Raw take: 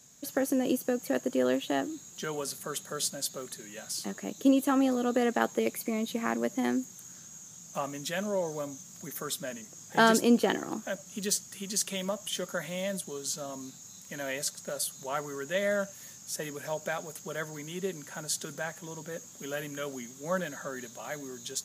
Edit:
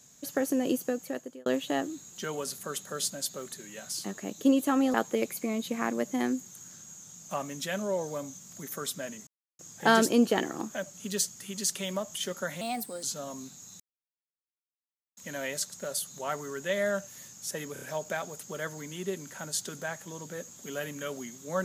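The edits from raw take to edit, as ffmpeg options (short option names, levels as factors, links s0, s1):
-filter_complex "[0:a]asplit=10[s0][s1][s2][s3][s4][s5][s6][s7][s8][s9];[s0]atrim=end=1.46,asetpts=PTS-STARTPTS,afade=t=out:st=0.82:d=0.64[s10];[s1]atrim=start=1.46:end=4.942,asetpts=PTS-STARTPTS,afade=t=in:d=0.004:c=hsin[s11];[s2]atrim=start=5.378:end=9.71,asetpts=PTS-STARTPTS,afade=t=out:st=4.328:d=0.004:c=hsin,apad=pad_dur=0.32[s12];[s3]atrim=start=9.71:end=12.734,asetpts=PTS-STARTPTS,afade=t=in:d=0.004:c=hsin[s13];[s4]atrim=start=12.73:end=13.25,asetpts=PTS-STARTPTS,asetrate=54684,aresample=44100[s14];[s5]atrim=start=13.246:end=14.02,asetpts=PTS-STARTPTS,afade=t=out:st=0.77:d=0.004:c=hsin,apad=pad_dur=1.37[s15];[s6]atrim=start=14.02:end=16.612,asetpts=PTS-STARTPTS,afade=t=in:d=0.004:c=hsin[s16];[s7]atrim=start=16.578:end=16.612[s17];[s8]atrim=start=16.578:end=16.612[s18];[s9]atrim=start=16.578[s19];[s10][s11]concat=n=2:v=0:a=1[s20];[s12][s13]concat=n=2:v=0:a=1[s21];[s20][s21]acrossfade=d=0.004:c1=hsin:c2=hsin[s22];[s22][s14]acrossfade=d=0.004:c1=hsin:c2=hsin[s23];[s15][s16]concat=n=2:v=0:a=1[s24];[s23][s24]acrossfade=d=0.004:c1=hsin:c2=hsin[s25];[s25][s17]acrossfade=d=0.004:c1=hsin:c2=hsin[s26];[s26][s18]acrossfade=d=0.004:c1=hsin:c2=hsin[s27];[s27][s19]acrossfade=d=0.004:c1=hsin:c2=hsin"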